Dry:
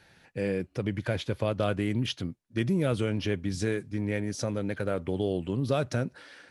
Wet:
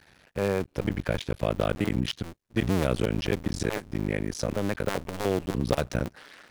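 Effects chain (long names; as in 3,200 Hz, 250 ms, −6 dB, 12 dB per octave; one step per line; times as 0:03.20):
sub-harmonics by changed cycles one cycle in 2, muted
level +4 dB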